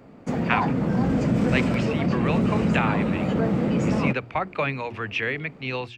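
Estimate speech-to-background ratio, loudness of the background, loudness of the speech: -5.0 dB, -23.5 LUFS, -28.5 LUFS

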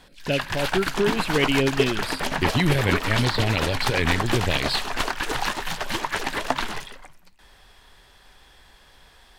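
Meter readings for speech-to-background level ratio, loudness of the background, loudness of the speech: 2.5 dB, -27.0 LUFS, -24.5 LUFS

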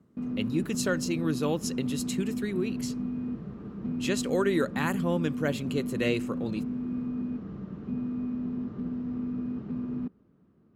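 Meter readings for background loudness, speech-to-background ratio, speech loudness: -34.0 LUFS, 3.0 dB, -31.0 LUFS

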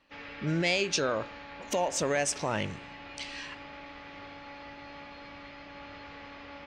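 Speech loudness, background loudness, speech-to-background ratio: -30.5 LUFS, -45.0 LUFS, 14.5 dB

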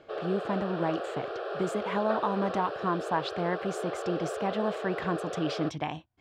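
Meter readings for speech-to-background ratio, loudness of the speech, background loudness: 3.5 dB, -32.5 LUFS, -36.0 LUFS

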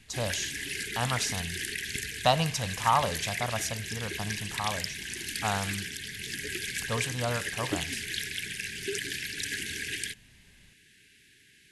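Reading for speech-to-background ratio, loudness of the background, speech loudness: 1.5 dB, -33.5 LUFS, -32.0 LUFS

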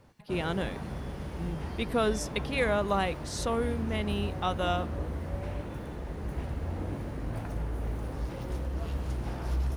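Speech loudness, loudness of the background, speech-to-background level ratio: -32.0 LUFS, -36.5 LUFS, 4.5 dB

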